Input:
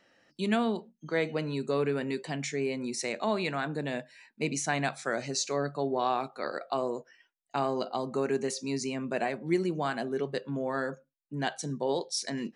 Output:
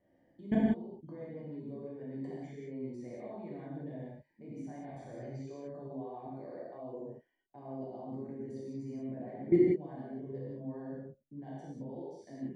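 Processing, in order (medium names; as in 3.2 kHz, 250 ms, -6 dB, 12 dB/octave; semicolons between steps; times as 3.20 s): peaking EQ 62 Hz +8 dB 1.8 oct; level held to a coarse grid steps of 24 dB; boxcar filter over 33 samples; gated-style reverb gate 210 ms flat, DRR -6.5 dB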